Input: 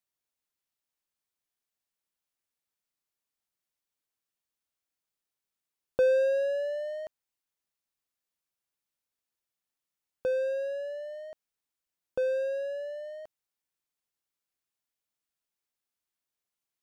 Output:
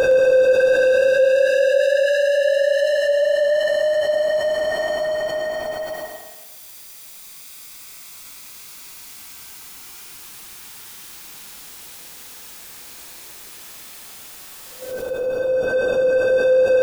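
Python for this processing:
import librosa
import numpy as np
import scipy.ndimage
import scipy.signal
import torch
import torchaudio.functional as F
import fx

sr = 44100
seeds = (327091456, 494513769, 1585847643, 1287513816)

p1 = fx.dereverb_blind(x, sr, rt60_s=1.6)
p2 = fx.rider(p1, sr, range_db=4, speed_s=2.0)
p3 = p1 + (p2 * 10.0 ** (0.5 / 20.0))
p4 = fx.paulstretch(p3, sr, seeds[0], factor=4.0, window_s=1.0, from_s=6.02)
p5 = fx.echo_thinned(p4, sr, ms=113, feedback_pct=43, hz=280.0, wet_db=-4.5)
p6 = fx.rev_schroeder(p5, sr, rt60_s=0.72, comb_ms=25, drr_db=10.0)
p7 = fx.env_flatten(p6, sr, amount_pct=70)
y = p7 * 10.0 ** (3.0 / 20.0)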